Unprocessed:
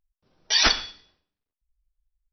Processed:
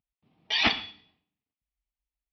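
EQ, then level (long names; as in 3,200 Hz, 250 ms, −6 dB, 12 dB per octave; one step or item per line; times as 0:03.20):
loudspeaker in its box 130–2,900 Hz, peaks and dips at 370 Hz −9 dB, 550 Hz −7 dB, 1,000 Hz −5 dB, 1,500 Hz −9 dB
parametric band 540 Hz −9 dB 0.39 octaves
parametric band 1,500 Hz −7.5 dB 0.91 octaves
+5.0 dB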